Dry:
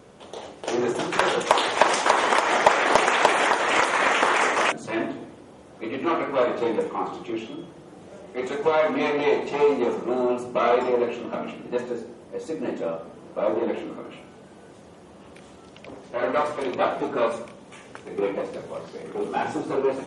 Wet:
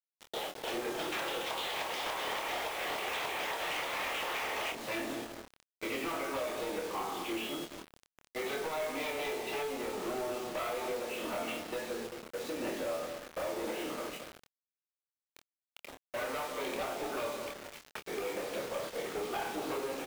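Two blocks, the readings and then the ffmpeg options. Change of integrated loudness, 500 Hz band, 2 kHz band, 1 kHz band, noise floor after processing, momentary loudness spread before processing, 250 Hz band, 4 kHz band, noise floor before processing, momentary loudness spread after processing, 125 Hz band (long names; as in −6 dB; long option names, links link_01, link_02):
−13.0 dB, −13.0 dB, −12.5 dB, −14.5 dB, below −85 dBFS, 17 LU, −12.5 dB, −7.5 dB, −47 dBFS, 8 LU, −12.5 dB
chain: -filter_complex "[0:a]lowpass=frequency=3800:width=0.5412,lowpass=frequency=3800:width=1.3066,aemphasis=mode=production:type=riaa,bandreject=frequency=1000:width=21,agate=range=-13dB:threshold=-40dB:ratio=16:detection=peak,adynamicequalizer=threshold=0.0141:dfrequency=1500:dqfactor=1.7:tfrequency=1500:tqfactor=1.7:attack=5:release=100:ratio=0.375:range=3.5:mode=cutabove:tftype=bell,acompressor=threshold=-34dB:ratio=10,volume=33.5dB,asoftclip=hard,volume=-33.5dB,asplit=2[link_01][link_02];[link_02]adelay=216,lowpass=frequency=890:poles=1,volume=-9dB,asplit=2[link_03][link_04];[link_04]adelay=216,lowpass=frequency=890:poles=1,volume=0.48,asplit=2[link_05][link_06];[link_06]adelay=216,lowpass=frequency=890:poles=1,volume=0.48,asplit=2[link_07][link_08];[link_08]adelay=216,lowpass=frequency=890:poles=1,volume=0.48,asplit=2[link_09][link_10];[link_10]adelay=216,lowpass=frequency=890:poles=1,volume=0.48[link_11];[link_01][link_03][link_05][link_07][link_09][link_11]amix=inputs=6:normalize=0,asoftclip=type=tanh:threshold=-35dB,acrusher=bits=7:mix=0:aa=0.000001,asplit=2[link_12][link_13];[link_13]adelay=26,volume=-6dB[link_14];[link_12][link_14]amix=inputs=2:normalize=0,volume=3dB"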